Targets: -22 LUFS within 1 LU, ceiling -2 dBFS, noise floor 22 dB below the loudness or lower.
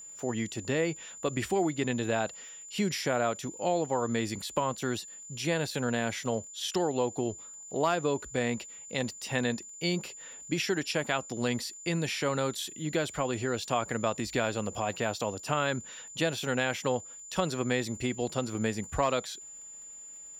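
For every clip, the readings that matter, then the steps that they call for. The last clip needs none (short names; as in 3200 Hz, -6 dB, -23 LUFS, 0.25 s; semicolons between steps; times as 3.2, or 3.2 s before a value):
ticks 22/s; steady tone 7100 Hz; tone level -44 dBFS; loudness -31.5 LUFS; peak -12.5 dBFS; loudness target -22.0 LUFS
-> de-click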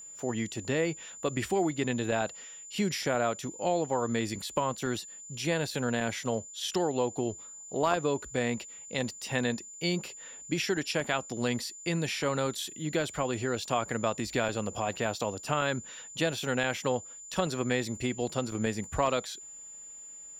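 ticks 0.049/s; steady tone 7100 Hz; tone level -44 dBFS
-> notch 7100 Hz, Q 30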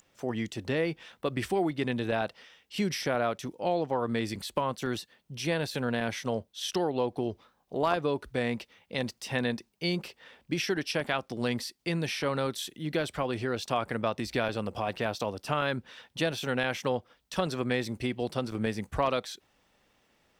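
steady tone none; loudness -31.5 LUFS; peak -12.5 dBFS; loudness target -22.0 LUFS
-> gain +9.5 dB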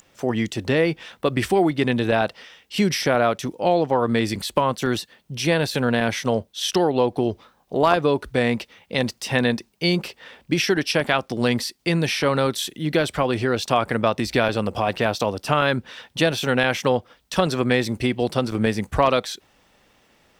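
loudness -22.0 LUFS; peak -3.0 dBFS; noise floor -62 dBFS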